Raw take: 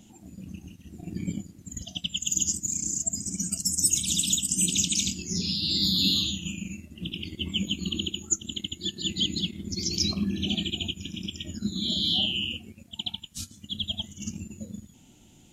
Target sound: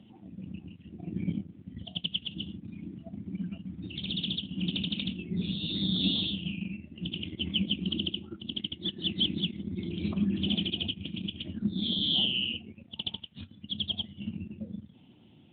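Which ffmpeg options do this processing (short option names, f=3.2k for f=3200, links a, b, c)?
-af "acontrast=82,volume=-7dB" -ar 8000 -c:a libopencore_amrnb -b:a 12200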